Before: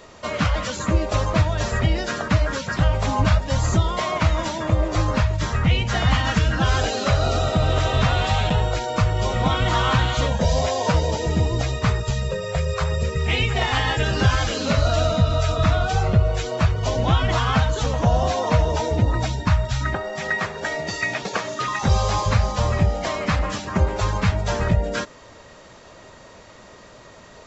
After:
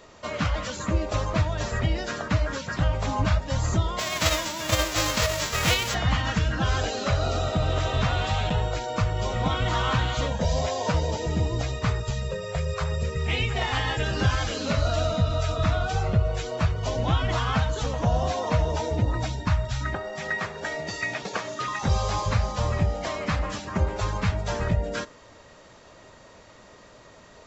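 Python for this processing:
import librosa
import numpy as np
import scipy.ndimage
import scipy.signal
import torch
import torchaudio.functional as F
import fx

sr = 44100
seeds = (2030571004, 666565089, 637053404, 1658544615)

y = fx.envelope_flatten(x, sr, power=0.3, at=(3.98, 5.93), fade=0.02)
y = fx.rev_fdn(y, sr, rt60_s=0.59, lf_ratio=1.0, hf_ratio=0.55, size_ms=20.0, drr_db=19.0)
y = y * 10.0 ** (-5.0 / 20.0)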